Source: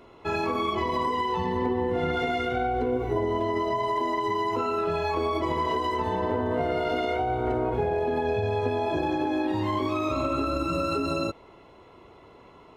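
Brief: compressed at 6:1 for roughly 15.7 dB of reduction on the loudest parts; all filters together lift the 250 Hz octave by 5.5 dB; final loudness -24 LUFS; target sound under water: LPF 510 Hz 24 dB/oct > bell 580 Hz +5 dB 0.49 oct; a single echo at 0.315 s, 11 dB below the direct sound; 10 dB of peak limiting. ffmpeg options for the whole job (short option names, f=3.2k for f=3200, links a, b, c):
-af "equalizer=f=250:t=o:g=7,acompressor=threshold=-37dB:ratio=6,alimiter=level_in=12.5dB:limit=-24dB:level=0:latency=1,volume=-12.5dB,lowpass=f=510:w=0.5412,lowpass=f=510:w=1.3066,equalizer=f=580:t=o:w=0.49:g=5,aecho=1:1:315:0.282,volume=21.5dB"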